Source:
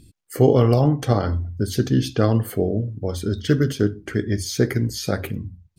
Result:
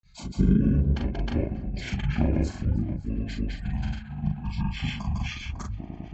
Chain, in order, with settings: tape echo 490 ms, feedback 49%, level -13 dB, low-pass 4.4 kHz; granular stretch 0.53×, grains 28 ms; granulator, pitch spread up and down by 0 st; chorus 1.3 Hz, delay 18.5 ms, depth 3 ms; speed mistake 15 ips tape played at 7.5 ips

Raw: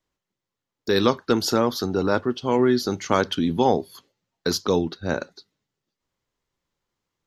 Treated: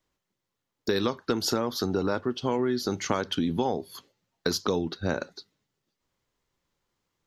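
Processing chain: compression 6:1, threshold -25 dBFS, peak gain reduction 12 dB; trim +2 dB

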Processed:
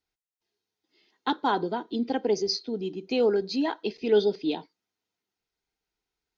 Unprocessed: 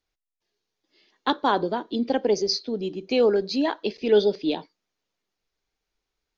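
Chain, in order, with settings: comb of notches 570 Hz; trim -2.5 dB

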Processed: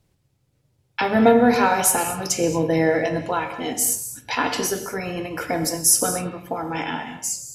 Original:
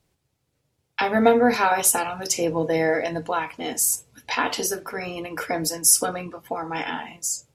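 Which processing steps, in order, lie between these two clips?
bass shelf 260 Hz +7 dB; gated-style reverb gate 260 ms flat, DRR 7.5 dB

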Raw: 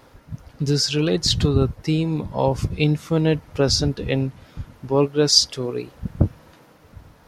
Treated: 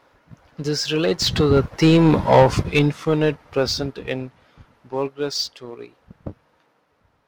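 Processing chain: Doppler pass-by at 2.15 s, 11 m/s, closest 3 m; overdrive pedal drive 15 dB, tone 2.4 kHz, clips at -16.5 dBFS; in parallel at -3.5 dB: crossover distortion -45 dBFS; on the sum: trim +6.5 dB

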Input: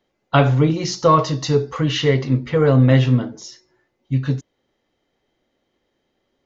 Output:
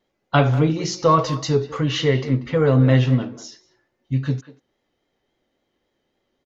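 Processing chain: speakerphone echo 190 ms, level -14 dB; vibrato 3.6 Hz 40 cents; trim -2 dB

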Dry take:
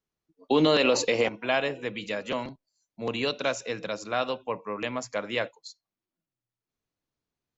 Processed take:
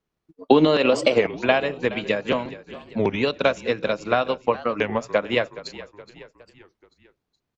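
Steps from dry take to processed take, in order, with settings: vibrato 0.8 Hz 6 cents; in parallel at +1 dB: compression, threshold -32 dBFS, peak gain reduction 13.5 dB; on the sum: transient shaper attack +7 dB, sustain -5 dB; treble shelf 4.5 kHz -11.5 dB; on a send: frequency-shifting echo 420 ms, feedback 49%, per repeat -37 Hz, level -16.5 dB; on the sum: warped record 33 1/3 rpm, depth 250 cents; trim +1.5 dB

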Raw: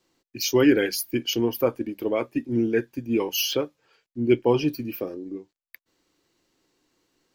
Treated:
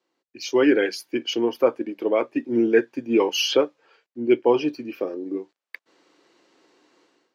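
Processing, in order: level rider gain up to 16.5 dB; band-pass 340–7500 Hz; treble shelf 3.3 kHz -10 dB; trim -2.5 dB

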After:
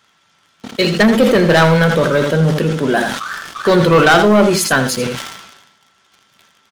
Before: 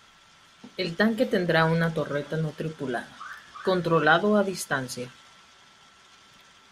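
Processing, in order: high-pass 85 Hz; waveshaping leveller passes 3; on a send: delay 82 ms -10.5 dB; on the sum: decay stretcher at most 52 dB/s; trim +3.5 dB

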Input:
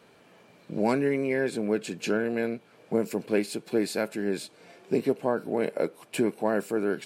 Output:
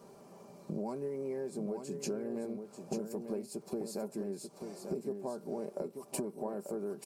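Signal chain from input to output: high-order bell 2.4 kHz -15.5 dB; comb 5.1 ms, depth 50%; compression 12:1, threshold -37 dBFS, peak gain reduction 20 dB; crackle 120 per s -61 dBFS; on a send: delay 890 ms -7 dB; on the sum: trim +2 dB

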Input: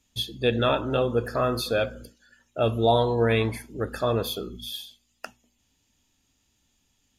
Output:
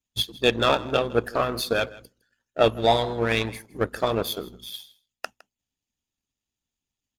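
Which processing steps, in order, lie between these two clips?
harmonic-percussive split percussive +9 dB; power-law waveshaper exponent 1.4; delay 160 ms -21 dB

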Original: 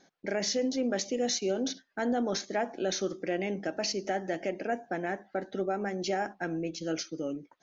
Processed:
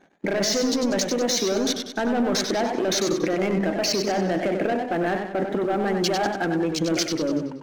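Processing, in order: local Wiener filter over 9 samples; waveshaping leveller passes 2; in parallel at -0.5 dB: compressor with a negative ratio -31 dBFS, ratio -0.5; on the sum: modulated delay 95 ms, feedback 48%, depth 100 cents, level -6.5 dB

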